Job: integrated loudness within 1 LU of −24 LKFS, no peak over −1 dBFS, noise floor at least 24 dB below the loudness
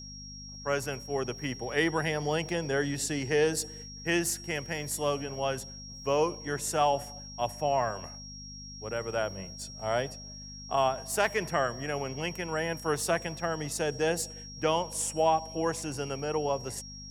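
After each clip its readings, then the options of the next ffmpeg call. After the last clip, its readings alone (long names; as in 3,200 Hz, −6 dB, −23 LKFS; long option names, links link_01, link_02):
mains hum 50 Hz; hum harmonics up to 250 Hz; level of the hum −45 dBFS; interfering tone 5,600 Hz; level of the tone −44 dBFS; integrated loudness −31.0 LKFS; sample peak −12.0 dBFS; target loudness −24.0 LKFS
→ -af "bandreject=frequency=50:width_type=h:width=4,bandreject=frequency=100:width_type=h:width=4,bandreject=frequency=150:width_type=h:width=4,bandreject=frequency=200:width_type=h:width=4,bandreject=frequency=250:width_type=h:width=4"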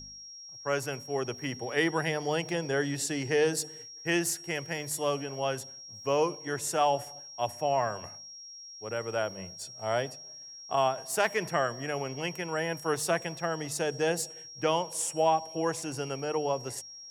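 mains hum none found; interfering tone 5,600 Hz; level of the tone −44 dBFS
→ -af "bandreject=frequency=5600:width=30"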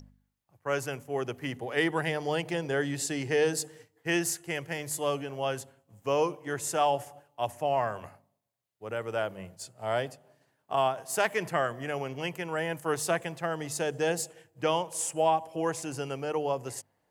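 interfering tone none found; integrated loudness −31.0 LKFS; sample peak −12.5 dBFS; target loudness −24.0 LKFS
→ -af "volume=7dB"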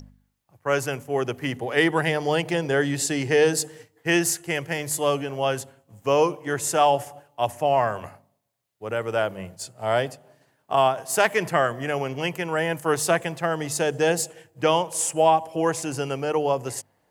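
integrated loudness −24.0 LKFS; sample peak −5.5 dBFS; background noise floor −68 dBFS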